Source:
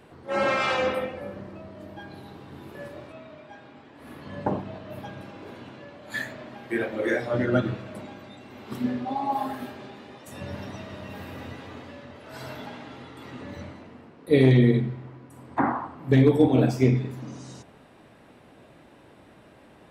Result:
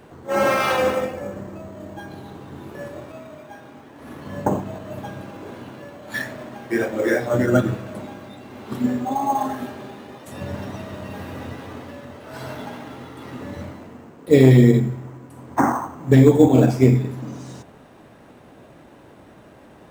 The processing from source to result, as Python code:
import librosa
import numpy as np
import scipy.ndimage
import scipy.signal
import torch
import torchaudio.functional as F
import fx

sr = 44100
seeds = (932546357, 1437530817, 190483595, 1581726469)

p1 = fx.peak_eq(x, sr, hz=2300.0, db=-2.5, octaves=0.77)
p2 = fx.sample_hold(p1, sr, seeds[0], rate_hz=7300.0, jitter_pct=0)
p3 = p1 + (p2 * 10.0 ** (-6.5 / 20.0))
y = p3 * 10.0 ** (2.5 / 20.0)